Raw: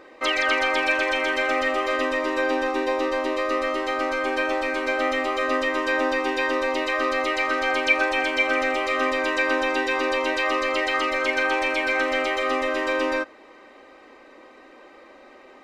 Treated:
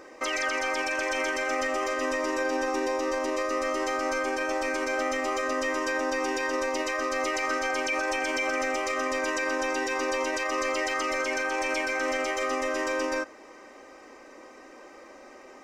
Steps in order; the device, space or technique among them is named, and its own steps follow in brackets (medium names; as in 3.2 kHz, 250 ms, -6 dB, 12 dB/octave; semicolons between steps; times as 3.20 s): over-bright horn tweeter (resonant high shelf 4.7 kHz +6 dB, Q 3; peak limiter -20 dBFS, peak gain reduction 11 dB)